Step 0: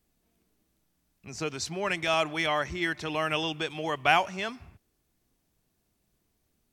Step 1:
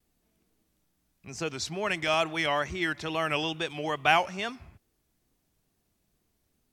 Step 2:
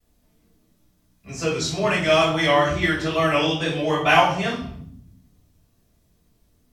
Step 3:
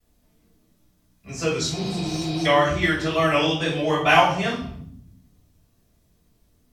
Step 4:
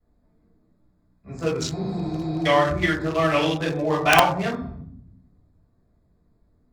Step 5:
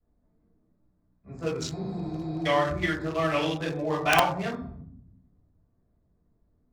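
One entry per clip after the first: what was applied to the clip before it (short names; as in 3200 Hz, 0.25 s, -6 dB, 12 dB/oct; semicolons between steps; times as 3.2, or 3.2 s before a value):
vibrato 2.3 Hz 77 cents
reverb RT60 0.65 s, pre-delay 3 ms, DRR -7 dB; gain -2.5 dB
spectral repair 1.79–2.43, 390–5300 Hz before
Wiener smoothing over 15 samples; wrapped overs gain 3.5 dB
mismatched tape noise reduction decoder only; gain -5.5 dB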